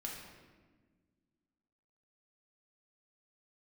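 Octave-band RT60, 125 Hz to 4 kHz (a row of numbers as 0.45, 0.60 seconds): 2.2, 2.4, 1.7, 1.2, 1.2, 0.95 seconds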